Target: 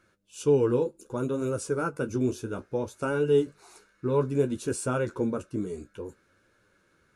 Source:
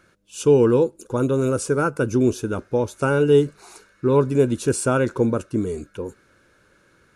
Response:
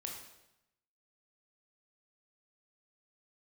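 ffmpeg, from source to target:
-af "flanger=delay=8.6:depth=8.4:regen=-35:speed=0.61:shape=triangular,volume=-4.5dB"

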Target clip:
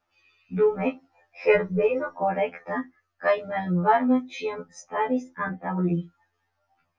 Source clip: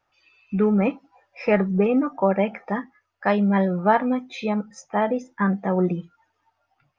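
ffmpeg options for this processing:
-filter_complex "[0:a]asettb=1/sr,asplit=3[a][b][c];[a]atrim=end=1.474[d];[b]atrim=start=1.47:end=2.18,asetpts=PTS-STARTPTS,afade=t=in:d=0.004:c=qsin,afade=t=out:st=0.706:d=0.004:c=qsin,aecho=1:1:2:0.92,atrim=end_sample=31311[e];[c]atrim=start=2.176[f];[d][e]acrossfade=d=0.004:c1=hsin:c2=qsin[g];[g][f]acrossfade=d=0.004:c1=qsin:c2=hsin,asettb=1/sr,asplit=3[h][i][j];[h]atrim=end=5.494[k];[i]atrim=start=5.49:end=5.94,asetpts=PTS-STARTPTS,afade=t=in:d=0.004:c=qsin,afade=t=out:st=0.446:d=0.004:c=qsin,bass=f=250:g=-3,treble=f=4k:g=-13[l];[j]atrim=start=5.936[m];[k][l]acrossfade=d=0.004:c1=hsin:c2=qsin[n];[n][m]acrossfade=d=0.004:c1=qsin:c2=hsin,afftfilt=real='re*2*eq(mod(b,4),0)':imag='im*2*eq(mod(b,4),0)':win_size=2048:overlap=0.75"

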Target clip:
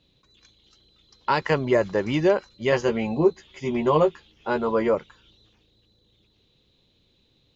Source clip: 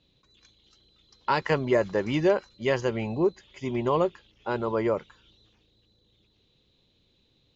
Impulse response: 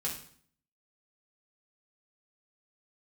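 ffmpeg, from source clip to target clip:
-filter_complex "[0:a]asettb=1/sr,asplit=3[a][b][c];[a]atrim=end=2.714[d];[b]atrim=start=2.71:end=4.95,asetpts=PTS-STARTPTS,afade=t=in:d=0.004:c=qsin,afade=t=out:st=2.236:d=0.004:c=qsin,asplit=2[e][f];[f]adelay=13,volume=-3.5dB[g];[e][g]amix=inputs=2:normalize=0,atrim=end_sample=98784[h];[c]atrim=start=4.946[i];[d][h]acrossfade=d=0.004:c1=hsin:c2=qsin[j];[j][i]acrossfade=d=0.004:c1=qsin:c2=hsin,volume=2.5dB"

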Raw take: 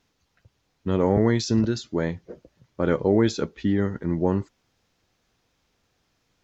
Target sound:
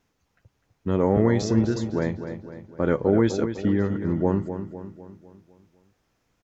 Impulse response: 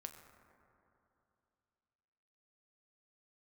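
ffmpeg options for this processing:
-filter_complex "[0:a]equalizer=f=4k:t=o:w=1.1:g=-7,asplit=2[a][b];[b]adelay=252,lowpass=f=4.6k:p=1,volume=-9.5dB,asplit=2[c][d];[d]adelay=252,lowpass=f=4.6k:p=1,volume=0.5,asplit=2[e][f];[f]adelay=252,lowpass=f=4.6k:p=1,volume=0.5,asplit=2[g][h];[h]adelay=252,lowpass=f=4.6k:p=1,volume=0.5,asplit=2[i][j];[j]adelay=252,lowpass=f=4.6k:p=1,volume=0.5,asplit=2[k][l];[l]adelay=252,lowpass=f=4.6k:p=1,volume=0.5[m];[c][e][g][i][k][m]amix=inputs=6:normalize=0[n];[a][n]amix=inputs=2:normalize=0"

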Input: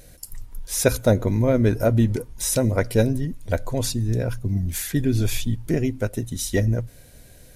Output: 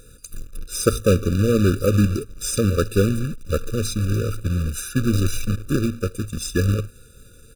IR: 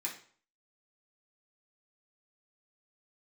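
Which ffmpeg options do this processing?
-af "acrusher=bits=2:mode=log:mix=0:aa=0.000001,asetrate=39289,aresample=44100,atempo=1.12246,afftfilt=real='re*eq(mod(floor(b*sr/1024/580),2),0)':imag='im*eq(mod(floor(b*sr/1024/580),2),0)':win_size=1024:overlap=0.75,volume=1dB"

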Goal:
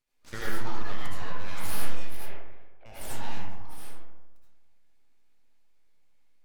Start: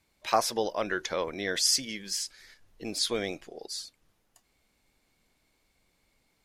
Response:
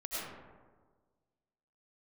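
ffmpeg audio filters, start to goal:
-filter_complex "[0:a]aeval=exprs='abs(val(0))':c=same,asettb=1/sr,asplit=3[a][b][c];[a]atrim=end=2.174[d];[b]atrim=start=2.17:end=2.86,asetpts=PTS-STARTPTS,afade=t=in:d=0.004:c=qsin,afade=t=out:st=0.686:d=0.004:c=qsin,highpass=f=350:w=0.5412,highpass=f=350:w=1.3066,equalizer=f=370:t=q:w=4:g=7,equalizer=f=570:t=q:w=4:g=6,equalizer=f=1k:t=q:w=4:g=-5,equalizer=f=2.3k:t=q:w=4:g=5,lowpass=f=2.8k:w=0.5412,lowpass=f=2.8k:w=1.3066[e];[c]atrim=start=2.856[f];[d][e]acrossfade=d=0.004:c1=hsin:c2=qsin[g];[g][f]acrossfade=d=0.004:c1=qsin:c2=hsin[h];[1:a]atrim=start_sample=2205,asetrate=57330,aresample=44100[i];[h][i]afir=irnorm=-1:irlink=0,volume=-5dB"

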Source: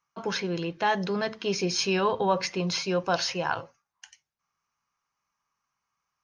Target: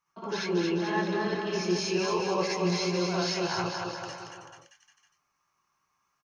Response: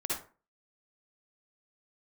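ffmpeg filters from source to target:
-filter_complex "[0:a]areverse,acompressor=threshold=-33dB:ratio=6,areverse,bandreject=f=480:w=13,aecho=1:1:230|437|623.3|791|941.9:0.631|0.398|0.251|0.158|0.1[a];[1:a]atrim=start_sample=2205,atrim=end_sample=4410[b];[a][b]afir=irnorm=-1:irlink=0"

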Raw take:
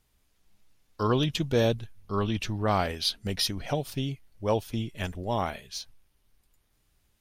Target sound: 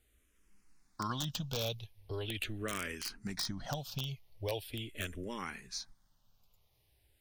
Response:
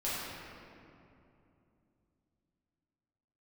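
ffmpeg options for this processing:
-filter_complex "[0:a]acrossover=split=1800|5300[a][b][c];[a]acompressor=threshold=-36dB:ratio=4[d];[b]acompressor=threshold=-35dB:ratio=4[e];[c]acompressor=threshold=-48dB:ratio=4[f];[d][e][f]amix=inputs=3:normalize=0,aeval=exprs='(mod(16.8*val(0)+1,2)-1)/16.8':c=same,asplit=2[g][h];[h]afreqshift=-0.41[i];[g][i]amix=inputs=2:normalize=1,volume=1dB"

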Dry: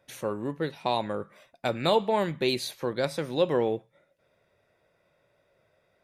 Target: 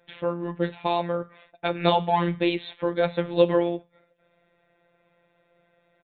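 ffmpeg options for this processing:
-af "afftfilt=real='hypot(re,im)*cos(PI*b)':imag='0':win_size=1024:overlap=0.75,aresample=8000,aresample=44100,volume=7dB"

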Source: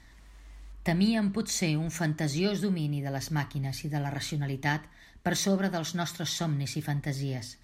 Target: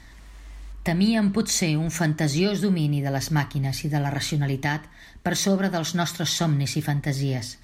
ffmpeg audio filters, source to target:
-af "alimiter=limit=-19dB:level=0:latency=1:release=347,volume=7.5dB"

